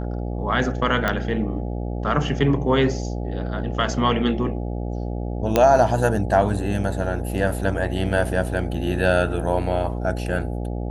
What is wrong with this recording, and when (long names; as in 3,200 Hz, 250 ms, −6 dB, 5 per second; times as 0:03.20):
mains buzz 60 Hz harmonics 14 −27 dBFS
0:01.08: click −8 dBFS
0:05.56: click −4 dBFS